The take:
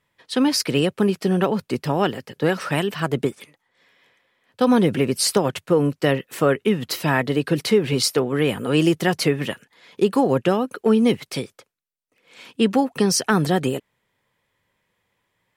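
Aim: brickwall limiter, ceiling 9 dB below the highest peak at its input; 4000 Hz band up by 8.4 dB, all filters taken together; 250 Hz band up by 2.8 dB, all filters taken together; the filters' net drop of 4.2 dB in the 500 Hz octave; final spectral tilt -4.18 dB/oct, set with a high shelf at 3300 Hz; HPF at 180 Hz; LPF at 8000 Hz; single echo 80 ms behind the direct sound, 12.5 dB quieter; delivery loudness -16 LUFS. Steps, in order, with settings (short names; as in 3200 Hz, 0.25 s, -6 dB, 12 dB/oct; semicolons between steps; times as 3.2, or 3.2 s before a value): HPF 180 Hz; LPF 8000 Hz; bell 250 Hz +7 dB; bell 500 Hz -8 dB; high shelf 3300 Hz +7 dB; bell 4000 Hz +6 dB; limiter -10 dBFS; echo 80 ms -12.5 dB; gain +5 dB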